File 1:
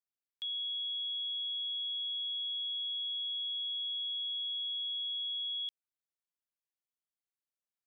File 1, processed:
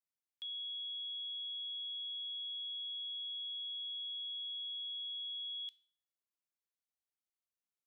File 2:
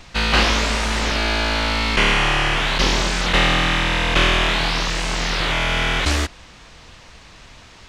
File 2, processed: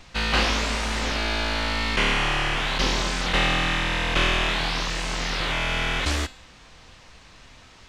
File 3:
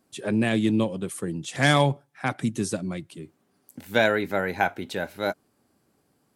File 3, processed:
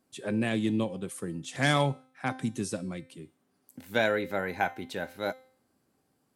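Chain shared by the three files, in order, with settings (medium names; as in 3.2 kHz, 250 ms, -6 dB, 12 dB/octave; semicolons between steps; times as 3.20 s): feedback comb 260 Hz, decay 0.54 s, harmonics all, mix 60%; trim +2 dB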